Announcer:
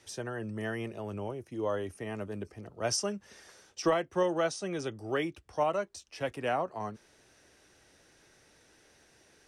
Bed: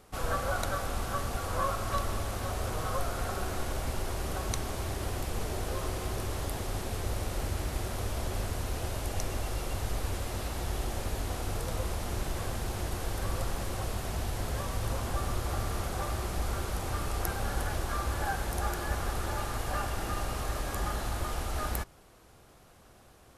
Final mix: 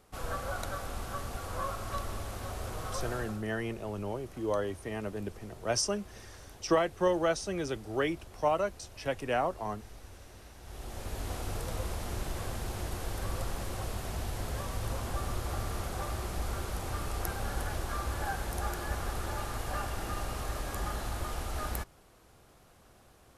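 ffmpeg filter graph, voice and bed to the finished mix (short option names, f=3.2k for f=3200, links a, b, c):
-filter_complex "[0:a]adelay=2850,volume=1dB[a];[1:a]volume=9.5dB,afade=t=out:st=3.13:d=0.3:silence=0.251189,afade=t=in:st=10.61:d=0.7:silence=0.188365[b];[a][b]amix=inputs=2:normalize=0"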